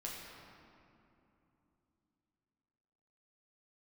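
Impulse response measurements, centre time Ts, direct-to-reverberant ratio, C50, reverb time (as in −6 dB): 120 ms, −3.5 dB, 0.0 dB, 3.0 s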